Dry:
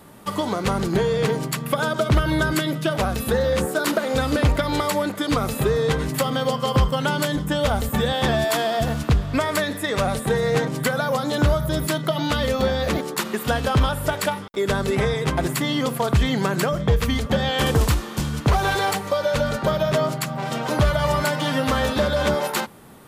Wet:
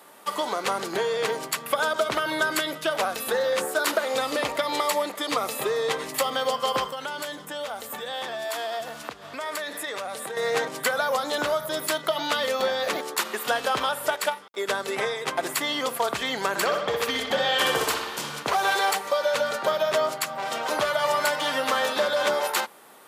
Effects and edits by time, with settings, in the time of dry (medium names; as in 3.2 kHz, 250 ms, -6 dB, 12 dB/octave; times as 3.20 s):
4.07–6.35 s: band-stop 1.5 kHz, Q 8.3
6.90–10.37 s: compression 10:1, threshold -25 dBFS
11.10–12.63 s: short-mantissa float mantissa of 8-bit
14.16–15.43 s: upward expansion, over -33 dBFS
16.49–18.43 s: bucket-brigade echo 62 ms, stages 2048, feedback 62%, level -5 dB
whole clip: high-pass 530 Hz 12 dB/octave